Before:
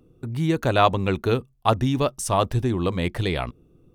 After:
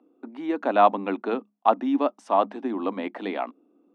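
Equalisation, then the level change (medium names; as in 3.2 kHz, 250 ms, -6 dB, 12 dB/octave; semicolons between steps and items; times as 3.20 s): rippled Chebyshev high-pass 200 Hz, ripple 9 dB; low-pass 2.5 kHz 12 dB/octave; +3.5 dB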